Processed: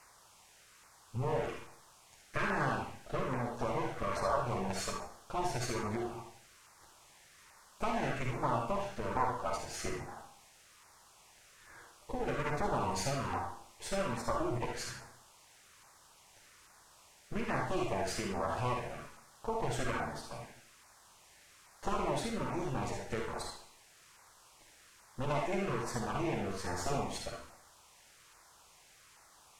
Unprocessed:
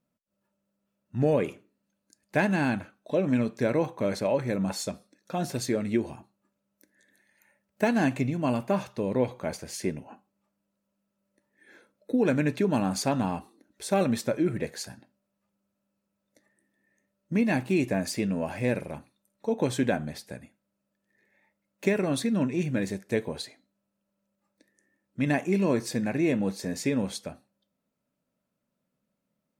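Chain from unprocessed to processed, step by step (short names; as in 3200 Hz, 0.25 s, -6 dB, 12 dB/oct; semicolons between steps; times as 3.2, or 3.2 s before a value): minimum comb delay 8.7 ms; compressor, threshold -29 dBFS, peak gain reduction 9 dB; reverb RT60 0.60 s, pre-delay 47 ms, DRR 0.5 dB; added noise white -55 dBFS; graphic EQ 250/500/1000/4000 Hz -9/-3/+7/-5 dB; LFO notch saw down 1.2 Hz 660–3500 Hz; LPF 7500 Hz 12 dB/oct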